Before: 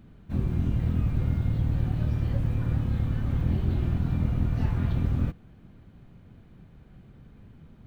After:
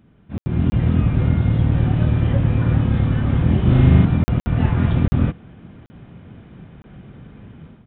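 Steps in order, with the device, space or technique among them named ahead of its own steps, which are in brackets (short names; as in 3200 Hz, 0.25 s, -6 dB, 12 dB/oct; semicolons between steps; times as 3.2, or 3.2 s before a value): call with lost packets (HPF 110 Hz 6 dB/oct; downsampling 8000 Hz; AGC gain up to 13 dB; packet loss bursts); 3.61–4.05 flutter echo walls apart 6.7 m, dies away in 1.4 s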